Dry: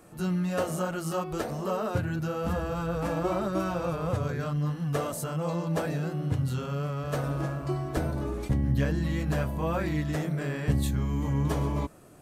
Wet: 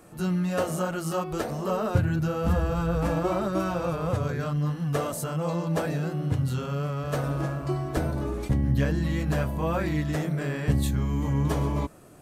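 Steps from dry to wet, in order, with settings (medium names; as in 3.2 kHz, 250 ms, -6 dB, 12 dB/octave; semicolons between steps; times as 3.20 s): 1.69–3.19 s: bass shelf 100 Hz +11 dB; trim +2 dB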